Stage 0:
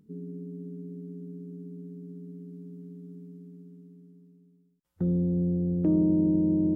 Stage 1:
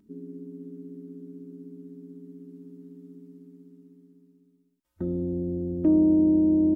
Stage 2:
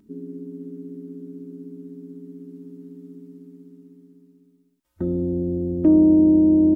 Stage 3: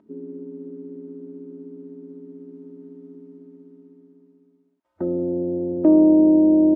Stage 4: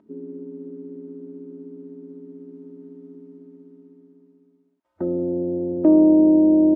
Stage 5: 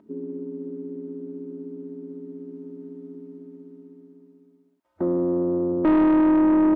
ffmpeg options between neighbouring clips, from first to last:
-af "aecho=1:1:3.2:0.73"
-af "equalizer=f=190:w=6.8:g=-2.5,volume=5.5dB"
-af "bandpass=f=710:t=q:w=1.3:csg=0,volume=8.5dB"
-af anull
-af "asoftclip=type=tanh:threshold=-17.5dB,volume=2.5dB"

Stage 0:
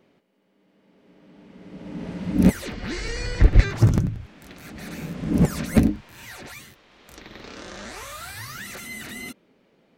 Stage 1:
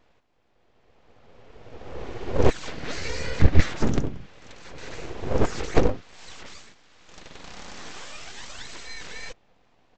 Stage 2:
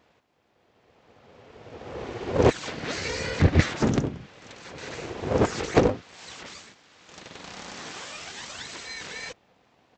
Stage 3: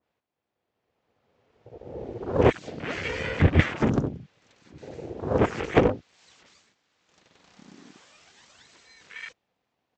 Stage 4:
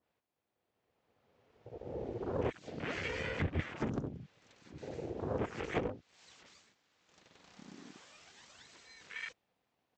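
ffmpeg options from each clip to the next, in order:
-af "aecho=1:1:4:0.39,aresample=16000,aeval=exprs='abs(val(0))':c=same,aresample=44100"
-af "highpass=91,volume=2.5dB"
-af "afwtdn=0.0224,adynamicequalizer=threshold=0.00891:dfrequency=1900:dqfactor=0.7:tfrequency=1900:tqfactor=0.7:attack=5:release=100:ratio=0.375:range=2.5:mode=boostabove:tftype=highshelf"
-af "acompressor=threshold=-33dB:ratio=3,volume=-3dB"

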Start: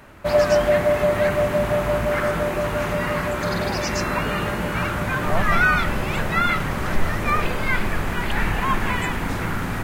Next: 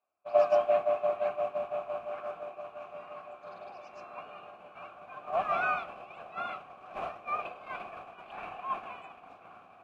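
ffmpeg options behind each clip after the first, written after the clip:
-filter_complex "[0:a]agate=range=-33dB:threshold=-12dB:ratio=3:detection=peak,asplit=3[a][b][c];[a]bandpass=f=730:t=q:w=8,volume=0dB[d];[b]bandpass=f=1.09k:t=q:w=8,volume=-6dB[e];[c]bandpass=f=2.44k:t=q:w=8,volume=-9dB[f];[d][e][f]amix=inputs=3:normalize=0,volume=5dB"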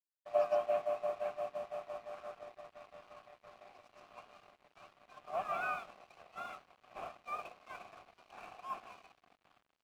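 -af "aeval=exprs='sgn(val(0))*max(abs(val(0))-0.00316,0)':c=same,volume=-7dB"

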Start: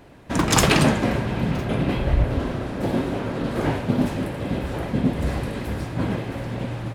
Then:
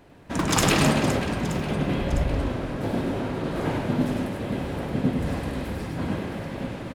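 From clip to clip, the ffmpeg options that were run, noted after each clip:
-af "bandreject=f=60:t=h:w=6,bandreject=f=120:t=h:w=6,aecho=1:1:100|260|516|925.6|1581:0.631|0.398|0.251|0.158|0.1,volume=-4.5dB"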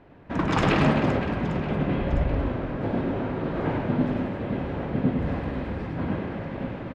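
-af "lowpass=2.4k"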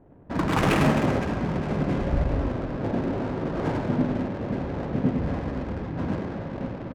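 -af "adynamicsmooth=sensitivity=7:basefreq=560"

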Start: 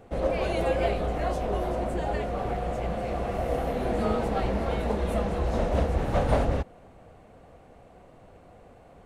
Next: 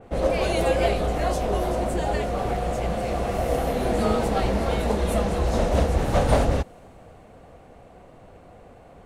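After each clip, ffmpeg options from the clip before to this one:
-af "adynamicequalizer=threshold=0.00282:dfrequency=3700:dqfactor=0.7:tfrequency=3700:tqfactor=0.7:attack=5:release=100:ratio=0.375:range=4:mode=boostabove:tftype=highshelf,volume=4dB"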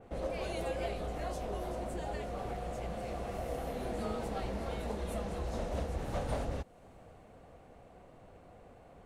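-af "acompressor=threshold=-37dB:ratio=1.5,volume=-8dB"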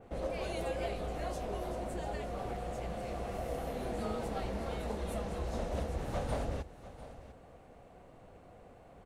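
-af "aecho=1:1:697:0.168"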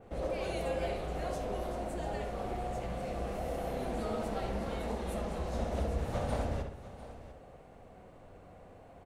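-filter_complex "[0:a]asplit=2[a][b];[b]adelay=65,lowpass=f=2.8k:p=1,volume=-4dB,asplit=2[c][d];[d]adelay=65,lowpass=f=2.8k:p=1,volume=0.52,asplit=2[e][f];[f]adelay=65,lowpass=f=2.8k:p=1,volume=0.52,asplit=2[g][h];[h]adelay=65,lowpass=f=2.8k:p=1,volume=0.52,asplit=2[i][j];[j]adelay=65,lowpass=f=2.8k:p=1,volume=0.52,asplit=2[k][l];[l]adelay=65,lowpass=f=2.8k:p=1,volume=0.52,asplit=2[m][n];[n]adelay=65,lowpass=f=2.8k:p=1,volume=0.52[o];[a][c][e][g][i][k][m][o]amix=inputs=8:normalize=0"

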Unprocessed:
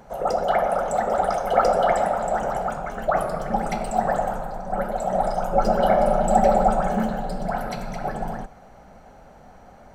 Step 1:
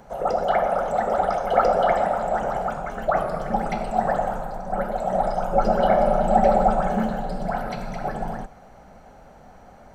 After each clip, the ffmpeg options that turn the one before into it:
-filter_complex "[0:a]acrossover=split=4800[a][b];[b]acompressor=threshold=-53dB:ratio=4:attack=1:release=60[c];[a][c]amix=inputs=2:normalize=0"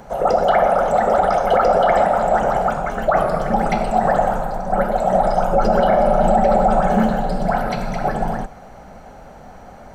-af "alimiter=level_in=12.5dB:limit=-1dB:release=50:level=0:latency=1,volume=-5dB"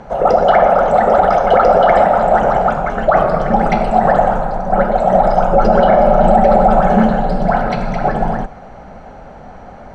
-af "adynamicsmooth=sensitivity=0.5:basefreq=4.6k,volume=5dB"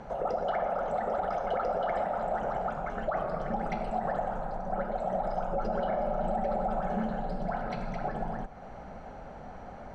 -af "acompressor=threshold=-28dB:ratio=2,volume=-9dB"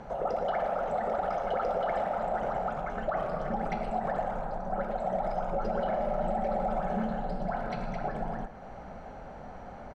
-filter_complex "[0:a]asplit=2[a][b];[b]adelay=110,highpass=300,lowpass=3.4k,asoftclip=type=hard:threshold=-29dB,volume=-10dB[c];[a][c]amix=inputs=2:normalize=0"

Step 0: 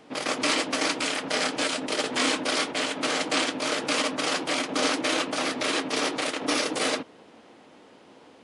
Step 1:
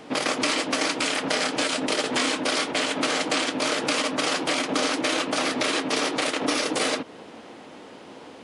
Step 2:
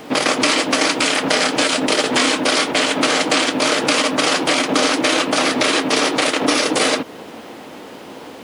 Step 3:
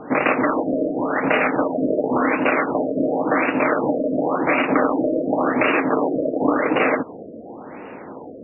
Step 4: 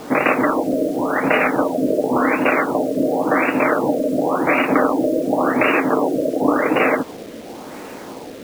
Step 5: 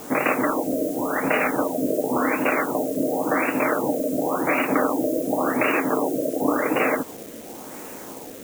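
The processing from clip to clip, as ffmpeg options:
-af "acompressor=threshold=-30dB:ratio=6,volume=8.5dB"
-af "acrusher=bits=8:mix=0:aa=0.5,volume=8dB"
-af "afftfilt=real='re*lt(b*sr/1024,650*pow(2900/650,0.5+0.5*sin(2*PI*0.92*pts/sr)))':imag='im*lt(b*sr/1024,650*pow(2900/650,0.5+0.5*sin(2*PI*0.92*pts/sr)))':win_size=1024:overlap=0.75"
-af "acrusher=bits=6:mix=0:aa=0.000001,volume=2dB"
-af "aexciter=amount=3.3:drive=5.3:freq=6.2k,volume=-5dB"

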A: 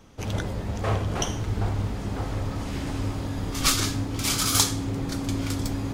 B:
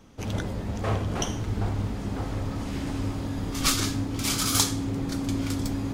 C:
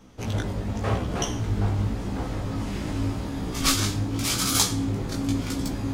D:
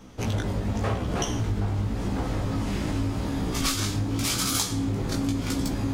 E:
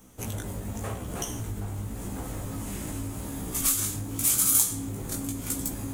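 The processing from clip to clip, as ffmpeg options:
-af "equalizer=f=240:w=1.7:g=4,volume=-2dB"
-af "flanger=delay=15.5:depth=4.5:speed=0.89,volume=4.5dB"
-af "acompressor=threshold=-27dB:ratio=5,volume=4dB"
-af "aexciter=amount=7.6:drive=5.1:freq=7k,volume=-7.5dB"

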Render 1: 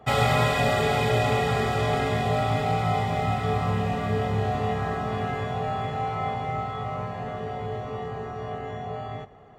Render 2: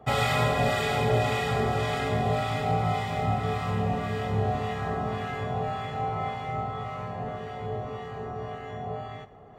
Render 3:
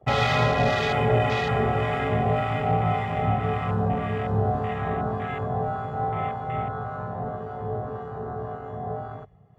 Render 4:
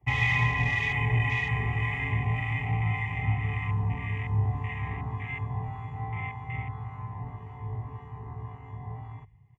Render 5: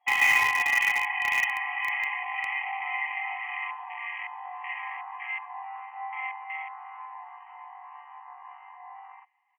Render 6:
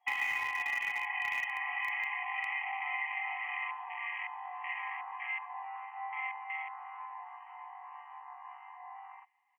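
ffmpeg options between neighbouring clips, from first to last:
-filter_complex "[0:a]areverse,acompressor=mode=upward:threshold=-44dB:ratio=2.5,areverse,acrossover=split=1200[a][b];[a]aeval=exprs='val(0)*(1-0.5/2+0.5/2*cos(2*PI*1.8*n/s))':c=same[c];[b]aeval=exprs='val(0)*(1-0.5/2-0.5/2*cos(2*PI*1.8*n/s))':c=same[d];[c][d]amix=inputs=2:normalize=0"
-af "afwtdn=0.0141,volume=3dB"
-af "firequalizer=gain_entry='entry(120,0);entry(200,-16);entry(280,-8);entry(590,-28);entry(970,2);entry(1400,-28);entry(2000,6);entry(4200,-17);entry(6100,-7);entry(11000,-9)':delay=0.05:min_phase=1"
-filter_complex "[0:a]afftfilt=real='re*between(b*sr/4096,730,3300)':imag='im*between(b*sr/4096,730,3300)':win_size=4096:overlap=0.75,asplit=2[a][b];[b]acrusher=bits=3:mix=0:aa=0.000001,volume=-12dB[c];[a][c]amix=inputs=2:normalize=0,volume=4dB"
-filter_complex "[0:a]acrossover=split=650|3600[a][b][c];[a]acompressor=threshold=-54dB:ratio=4[d];[b]acompressor=threshold=-30dB:ratio=4[e];[c]acompressor=threshold=-53dB:ratio=4[f];[d][e][f]amix=inputs=3:normalize=0,volume=-2.5dB"

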